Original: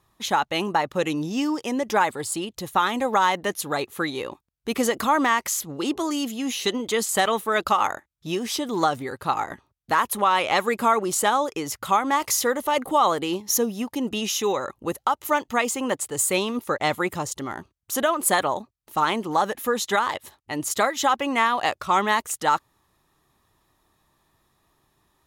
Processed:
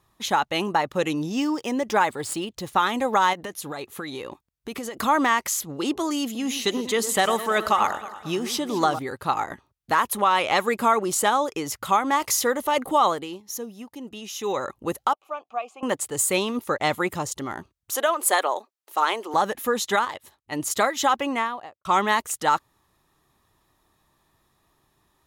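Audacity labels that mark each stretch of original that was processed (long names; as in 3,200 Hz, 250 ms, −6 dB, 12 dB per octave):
1.400000	2.830000	running median over 3 samples
3.330000	4.990000	downward compressor, threshold −29 dBFS
6.240000	8.990000	delay that swaps between a low-pass and a high-pass 107 ms, split 1,500 Hz, feedback 67%, level −11 dB
13.060000	14.580000	duck −11 dB, fades 0.36 s quadratic
15.130000	15.830000	formant filter a
17.950000	19.340000	high-pass filter 370 Hz 24 dB per octave
20.050000	20.520000	clip gain −6 dB
21.160000	21.850000	fade out and dull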